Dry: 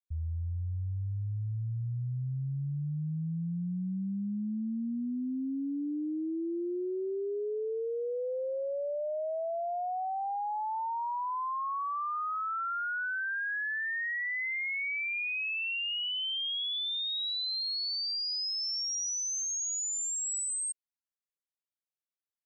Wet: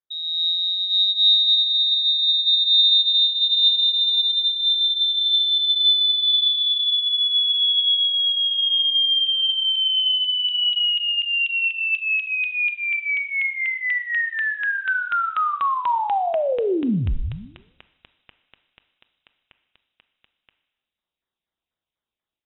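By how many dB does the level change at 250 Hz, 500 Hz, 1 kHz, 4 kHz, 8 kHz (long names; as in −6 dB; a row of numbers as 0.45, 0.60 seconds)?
+1.5 dB, +4.5 dB, +7.5 dB, +20.0 dB, below −40 dB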